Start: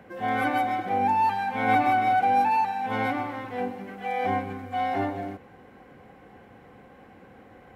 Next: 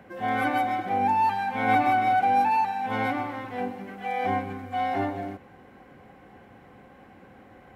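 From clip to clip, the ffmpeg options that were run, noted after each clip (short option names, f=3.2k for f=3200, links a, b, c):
-af "bandreject=f=470:w=12"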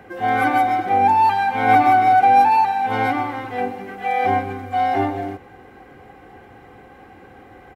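-af "aecho=1:1:2.5:0.45,volume=6dB"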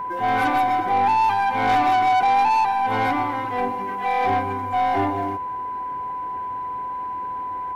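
-af "aeval=exprs='0.708*(cos(1*acos(clip(val(0)/0.708,-1,1)))-cos(1*PI/2))+0.02*(cos(8*acos(clip(val(0)/0.708,-1,1)))-cos(8*PI/2))':c=same,asoftclip=type=tanh:threshold=-15dB,aeval=exprs='val(0)+0.0501*sin(2*PI*1000*n/s)':c=same"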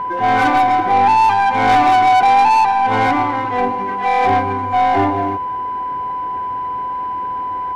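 -af "adynamicsmooth=sensitivity=4:basefreq=4.3k,volume=6.5dB"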